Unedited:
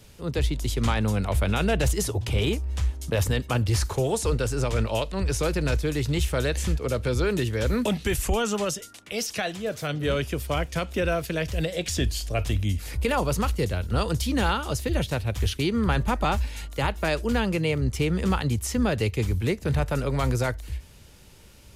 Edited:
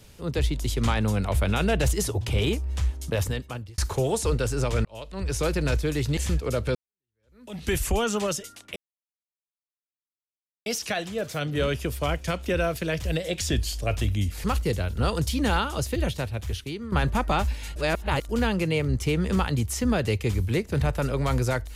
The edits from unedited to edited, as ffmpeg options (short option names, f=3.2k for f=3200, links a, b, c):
-filter_complex "[0:a]asplit=10[a][b][c][d][e][f][g][h][i][j];[a]atrim=end=3.78,asetpts=PTS-STARTPTS,afade=t=out:st=3.04:d=0.74[k];[b]atrim=start=3.78:end=4.85,asetpts=PTS-STARTPTS,afade=t=in:d=0.004:c=hsin,afade=t=out:st=1.066:d=0.004:c=hsin[l];[c]atrim=start=4.85:end=6.172,asetpts=PTS-STARTPTS,afade=t=in:d=0.6[m];[d]atrim=start=6.548:end=7.13,asetpts=PTS-STARTPTS,afade=t=out:st=0.578:d=0.004:c=hsin[n];[e]atrim=start=7.13:end=9.14,asetpts=PTS-STARTPTS,afade=t=in:d=0.89:c=exp,afade=t=out:st=2.006:d=0.004:c=hsin,apad=pad_dur=1.9[o];[f]atrim=start=9.14:end=12.922,asetpts=PTS-STARTPTS,afade=t=in:d=0.004:c=hsin[p];[g]atrim=start=13.368:end=15.85,asetpts=PTS-STARTPTS,afade=t=out:st=1.472:d=1.01:silence=0.223872[q];[h]atrim=start=15.85:end=16.692,asetpts=PTS-STARTPTS,afade=t=in:d=0.004:c=hsin:silence=0.223872[r];[i]atrim=start=16.688:end=17.222,asetpts=PTS-STARTPTS,areverse[s];[j]atrim=start=17.218[t];[k][l][m]concat=n=3:v=0:a=1[u];[n][o][p]concat=n=3:v=0:a=1[v];[u][v]acrossfade=d=0.004:c1=hsin:c2=hsin[w];[q][r]concat=n=2:v=0:a=1[x];[w][x]acrossfade=d=0.004:c1=hsin:c2=hsin[y];[y][s]acrossfade=d=0.004:c1=hsin:c2=hsin[z];[z][t]acrossfade=d=0.004:c1=hsin:c2=hsin"